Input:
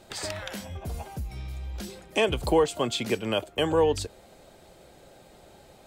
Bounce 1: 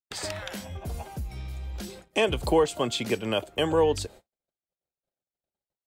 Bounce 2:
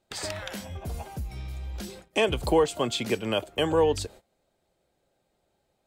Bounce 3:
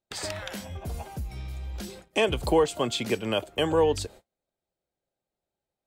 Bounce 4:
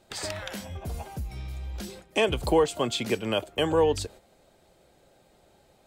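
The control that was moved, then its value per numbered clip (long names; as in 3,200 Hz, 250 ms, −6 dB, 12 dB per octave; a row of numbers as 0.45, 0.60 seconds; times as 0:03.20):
noise gate, range: −58, −21, −36, −8 decibels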